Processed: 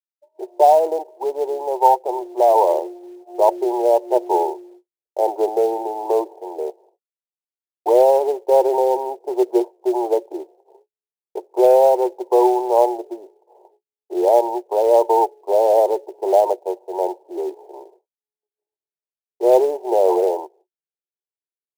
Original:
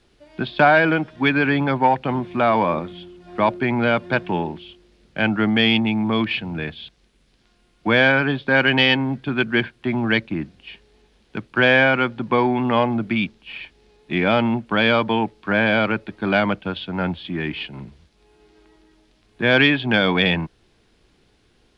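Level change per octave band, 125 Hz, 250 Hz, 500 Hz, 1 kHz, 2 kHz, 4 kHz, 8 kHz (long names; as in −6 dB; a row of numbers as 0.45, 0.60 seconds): below −30 dB, −6.5 dB, +7.0 dB, +4.0 dB, below −25 dB, below −15 dB, can't be measured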